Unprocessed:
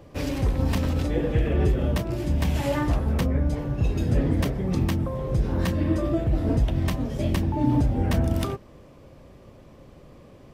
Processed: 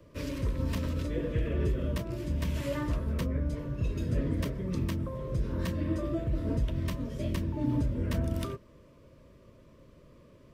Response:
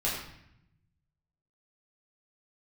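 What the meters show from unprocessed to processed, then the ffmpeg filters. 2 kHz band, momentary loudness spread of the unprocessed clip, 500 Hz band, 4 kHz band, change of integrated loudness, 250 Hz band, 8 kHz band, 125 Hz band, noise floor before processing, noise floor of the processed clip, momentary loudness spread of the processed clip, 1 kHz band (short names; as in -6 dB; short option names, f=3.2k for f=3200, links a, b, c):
-8.0 dB, 4 LU, -7.5 dB, -7.5 dB, -7.5 dB, -7.5 dB, -7.5 dB, -7.5 dB, -49 dBFS, -57 dBFS, 4 LU, -11.0 dB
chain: -filter_complex "[0:a]asuperstop=centerf=780:order=12:qfactor=3.7,acrossover=split=280|1100|2000[a][b][c][d];[c]asoftclip=type=hard:threshold=-36dB[e];[a][b][e][d]amix=inputs=4:normalize=0,volume=-7.5dB"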